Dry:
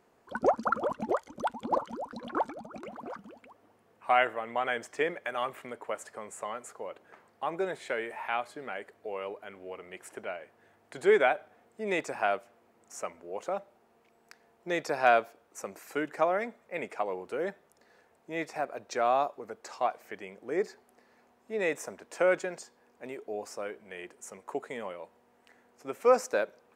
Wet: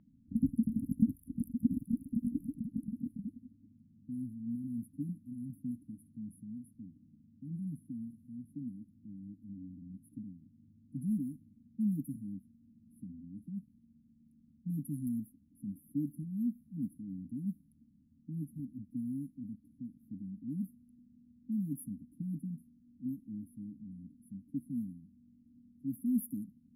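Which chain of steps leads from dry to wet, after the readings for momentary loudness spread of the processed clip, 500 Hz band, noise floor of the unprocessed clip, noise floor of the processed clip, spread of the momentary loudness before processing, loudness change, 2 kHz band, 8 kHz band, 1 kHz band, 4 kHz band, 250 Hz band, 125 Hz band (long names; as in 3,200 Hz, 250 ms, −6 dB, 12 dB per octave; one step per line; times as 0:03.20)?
16 LU, below −35 dB, −66 dBFS, −66 dBFS, 18 LU, −7.5 dB, below −40 dB, below −10 dB, below −40 dB, below −35 dB, +6.5 dB, +11.0 dB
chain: linear-phase brick-wall band-stop 290–9,800 Hz
low-pass that shuts in the quiet parts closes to 2,500 Hz, open at −43 dBFS
level +11 dB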